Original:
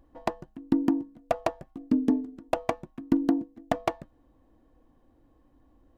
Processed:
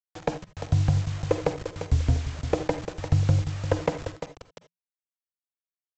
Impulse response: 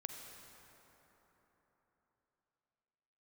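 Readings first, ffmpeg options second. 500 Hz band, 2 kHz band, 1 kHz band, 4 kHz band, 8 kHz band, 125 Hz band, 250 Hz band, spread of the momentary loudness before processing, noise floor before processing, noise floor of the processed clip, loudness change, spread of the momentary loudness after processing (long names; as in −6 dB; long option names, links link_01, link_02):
+3.0 dB, +2.5 dB, −2.5 dB, +6.0 dB, can't be measured, +20.0 dB, −7.5 dB, 10 LU, −64 dBFS, below −85 dBFS, +2.0 dB, 12 LU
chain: -filter_complex "[0:a]lowpass=frequency=2700:poles=1,aecho=1:1:347|694|1041:0.282|0.0676|0.0162,acrossover=split=170[link_01][link_02];[link_01]alimiter=level_in=7.5dB:limit=-24dB:level=0:latency=1:release=169,volume=-7.5dB[link_03];[link_03][link_02]amix=inputs=2:normalize=0,acontrast=86,aresample=16000,acrusher=bits=5:mix=0:aa=0.000001,aresample=44100,afreqshift=-180[link_04];[1:a]atrim=start_sample=2205,atrim=end_sample=3969[link_05];[link_04][link_05]afir=irnorm=-1:irlink=0"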